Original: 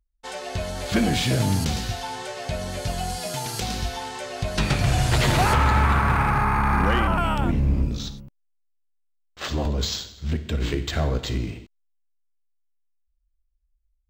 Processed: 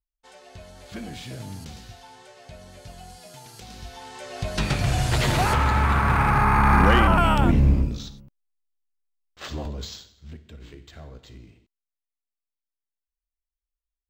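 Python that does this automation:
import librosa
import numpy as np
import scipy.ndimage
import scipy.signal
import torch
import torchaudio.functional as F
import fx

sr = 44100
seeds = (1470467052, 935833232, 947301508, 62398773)

y = fx.gain(x, sr, db=fx.line((3.65, -15.0), (4.43, -2.0), (5.78, -2.0), (6.71, 4.0), (7.67, 4.0), (8.07, -6.0), (9.55, -6.0), (10.61, -19.0)))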